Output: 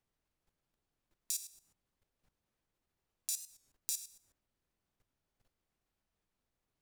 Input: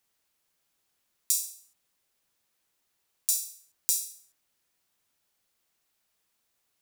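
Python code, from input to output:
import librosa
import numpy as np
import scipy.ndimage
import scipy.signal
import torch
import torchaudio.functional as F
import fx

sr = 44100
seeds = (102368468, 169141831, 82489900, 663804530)

y = fx.tilt_eq(x, sr, slope=-3.5)
y = fx.level_steps(y, sr, step_db=13)
y = fx.record_warp(y, sr, rpm=45.0, depth_cents=100.0)
y = F.gain(torch.from_numpy(y), 4.0).numpy()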